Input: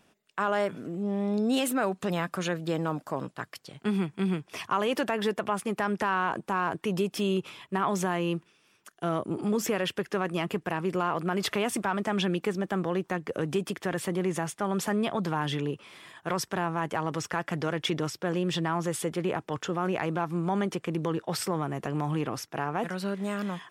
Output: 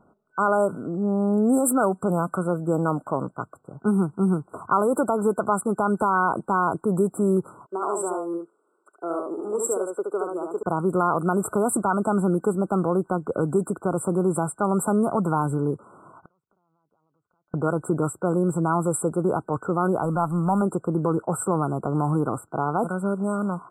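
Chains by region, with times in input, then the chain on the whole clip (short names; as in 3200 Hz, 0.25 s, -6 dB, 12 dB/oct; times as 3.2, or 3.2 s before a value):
7.66–10.63 ladder high-pass 330 Hz, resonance 50% + bell 7500 Hz +12.5 dB 1.6 oct + echo 71 ms -3.5 dB
16.2–17.54 compressor 12:1, threshold -43 dBFS + flipped gate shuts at -44 dBFS, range -28 dB
20.04–20.62 G.711 law mismatch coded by mu + bell 380 Hz -9 dB 0.55 oct
whole clip: low-pass opened by the level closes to 2800 Hz, open at -23 dBFS; FFT band-reject 1500–7400 Hz; dynamic EQ 7000 Hz, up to +5 dB, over -52 dBFS, Q 0.71; gain +6.5 dB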